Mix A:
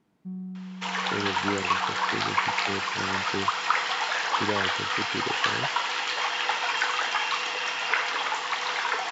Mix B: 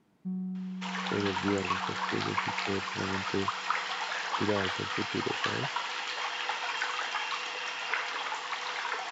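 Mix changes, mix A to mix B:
second sound −6.5 dB
reverb: on, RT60 0.40 s

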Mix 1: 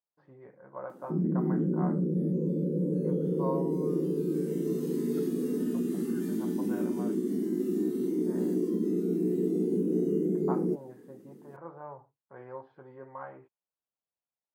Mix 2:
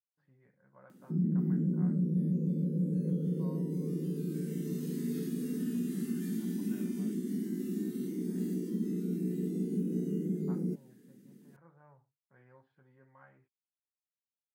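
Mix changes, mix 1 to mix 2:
speech −8.0 dB
master: add flat-topped bell 600 Hz −11.5 dB 2.3 octaves

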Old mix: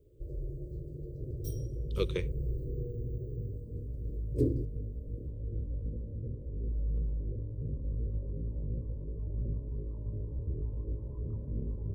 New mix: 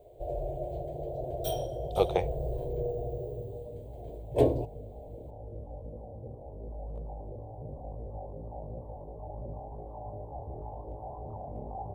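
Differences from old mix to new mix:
first sound: remove drawn EQ curve 290 Hz 0 dB, 3,300 Hz −27 dB, 5,000 Hz −3 dB, 7,400 Hz −9 dB
second sound: add spectral tilt +2 dB per octave
master: remove Butterworth band-reject 750 Hz, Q 0.79

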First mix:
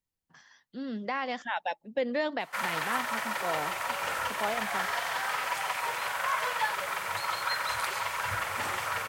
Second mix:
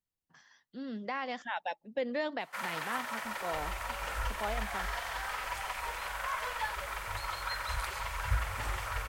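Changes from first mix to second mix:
speech −4.0 dB
first sound −6.0 dB
second sound: remove high-pass filter 110 Hz 24 dB per octave

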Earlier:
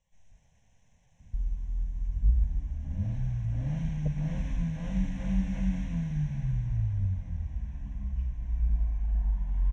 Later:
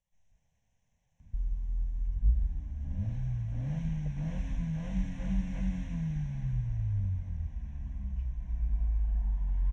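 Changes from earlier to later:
speech −10.0 dB
reverb: off

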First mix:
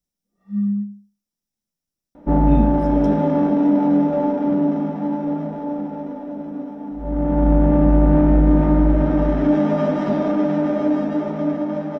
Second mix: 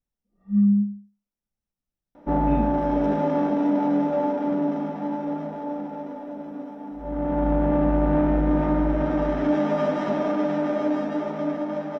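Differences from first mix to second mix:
speech: add high shelf with overshoot 3,200 Hz −10 dB, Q 1.5
first sound: add spectral tilt −4.5 dB per octave
master: add low-shelf EQ 360 Hz −10 dB

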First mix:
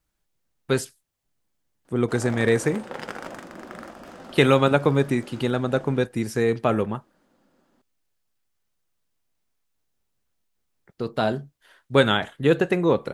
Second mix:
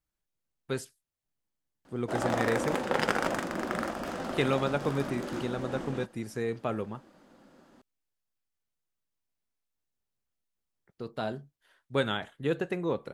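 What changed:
speech −10.5 dB
background +7.0 dB

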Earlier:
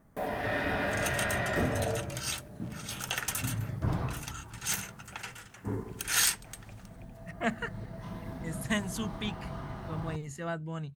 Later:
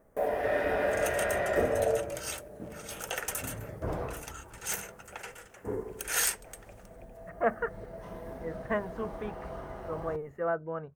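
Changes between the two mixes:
speech: add low-pass with resonance 1,300 Hz, resonance Q 2.1
master: add octave-band graphic EQ 125/250/500/1,000/4,000 Hz −10/−5/+11/−3/−8 dB

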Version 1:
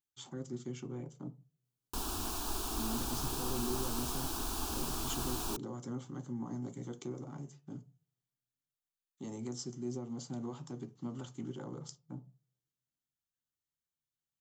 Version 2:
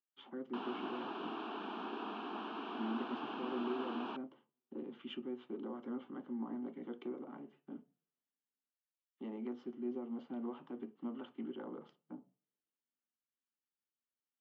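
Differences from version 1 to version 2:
background: entry −1.40 s
master: add Chebyshev band-pass filter 210–3,000 Hz, order 4

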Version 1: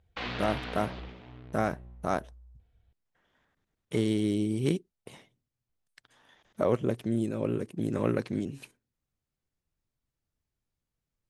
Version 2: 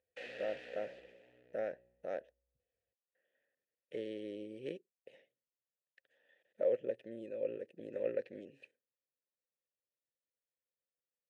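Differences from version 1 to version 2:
background: remove low-pass filter 4,100 Hz 24 dB per octave
master: add formant filter e

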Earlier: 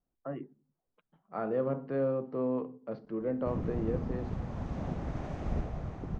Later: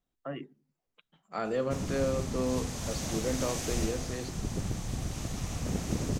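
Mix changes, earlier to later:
background: entry −1.75 s
master: remove low-pass filter 1,200 Hz 12 dB per octave

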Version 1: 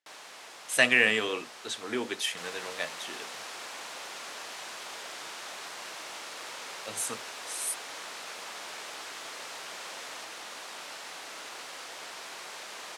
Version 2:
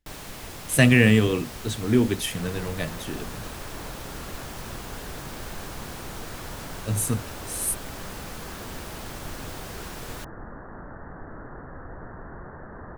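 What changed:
first sound +4.0 dB
second sound: add Butterworth low-pass 1,800 Hz 96 dB per octave
master: remove band-pass filter 650–7,700 Hz

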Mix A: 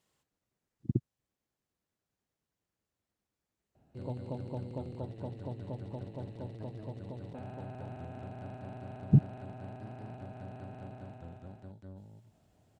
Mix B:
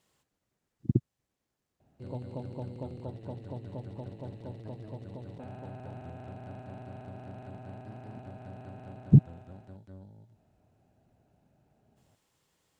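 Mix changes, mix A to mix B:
speech +4.5 dB
background: entry −1.95 s

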